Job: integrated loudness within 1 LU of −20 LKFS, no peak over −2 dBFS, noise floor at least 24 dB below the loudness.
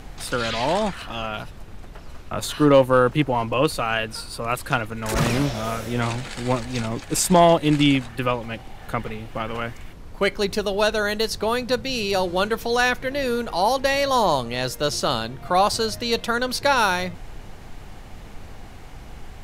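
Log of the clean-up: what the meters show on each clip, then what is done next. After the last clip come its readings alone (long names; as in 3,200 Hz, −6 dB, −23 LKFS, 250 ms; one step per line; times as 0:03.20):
background noise floor −40 dBFS; target noise floor −46 dBFS; integrated loudness −22.0 LKFS; sample peak −4.5 dBFS; target loudness −20.0 LKFS
→ noise reduction from a noise print 6 dB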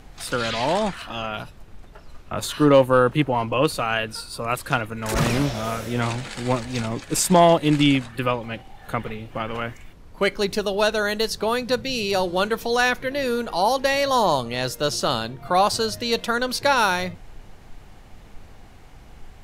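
background noise floor −46 dBFS; integrated loudness −22.0 LKFS; sample peak −4.5 dBFS; target loudness −20.0 LKFS
→ level +2 dB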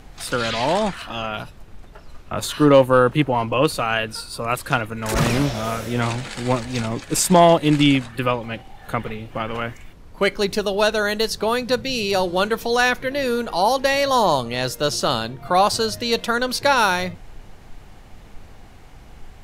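integrated loudness −20.0 LKFS; sample peak −2.5 dBFS; background noise floor −44 dBFS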